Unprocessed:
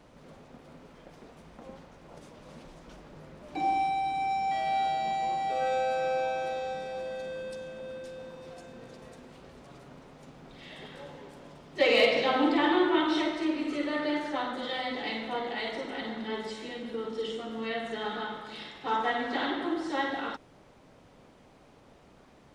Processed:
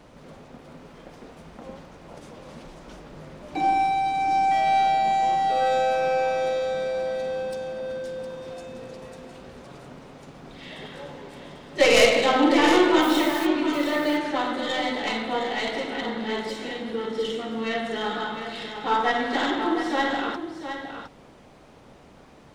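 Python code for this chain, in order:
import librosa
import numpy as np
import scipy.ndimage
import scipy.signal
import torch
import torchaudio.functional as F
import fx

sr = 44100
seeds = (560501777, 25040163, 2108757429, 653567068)

p1 = fx.tracing_dist(x, sr, depth_ms=0.093)
p2 = fx.dmg_noise_colour(p1, sr, seeds[0], colour='white', level_db=-47.0, at=(13.01, 13.45), fade=0.02)
p3 = p2 + fx.echo_single(p2, sr, ms=711, db=-9.0, dry=0)
y = p3 * 10.0 ** (6.0 / 20.0)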